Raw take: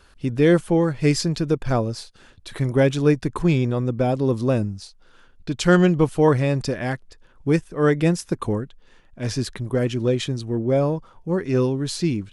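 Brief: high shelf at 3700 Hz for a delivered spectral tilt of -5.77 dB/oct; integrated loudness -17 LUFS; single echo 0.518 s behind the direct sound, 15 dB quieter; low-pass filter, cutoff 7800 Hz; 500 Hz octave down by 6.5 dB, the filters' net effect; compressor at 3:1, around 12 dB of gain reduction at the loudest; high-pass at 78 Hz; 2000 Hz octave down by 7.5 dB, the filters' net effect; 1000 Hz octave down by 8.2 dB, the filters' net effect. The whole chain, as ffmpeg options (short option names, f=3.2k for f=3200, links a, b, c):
-af "highpass=78,lowpass=7.8k,equalizer=f=500:t=o:g=-6.5,equalizer=f=1k:t=o:g=-7,equalizer=f=2k:t=o:g=-8.5,highshelf=f=3.7k:g=6,acompressor=threshold=-32dB:ratio=3,aecho=1:1:518:0.178,volume=17dB"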